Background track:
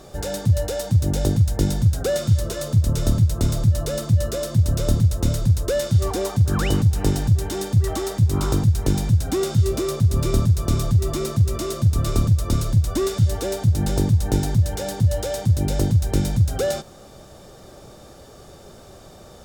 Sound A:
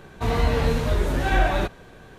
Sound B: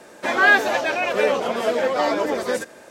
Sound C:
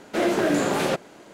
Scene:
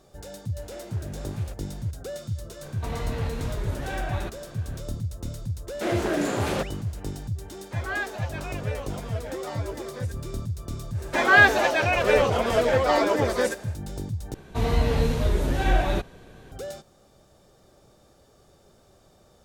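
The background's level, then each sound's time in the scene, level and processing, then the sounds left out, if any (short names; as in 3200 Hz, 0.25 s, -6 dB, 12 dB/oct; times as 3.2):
background track -13.5 dB
0.58 add C -6 dB + compressor 3:1, threshold -42 dBFS
2.62 add A -0.5 dB + compressor 2:1, threshold -34 dBFS
5.67 add C -4 dB
7.48 add B -15.5 dB
10.9 add B -0.5 dB, fades 0.10 s
14.34 replace with A -0.5 dB + bell 1400 Hz -5 dB 1.8 oct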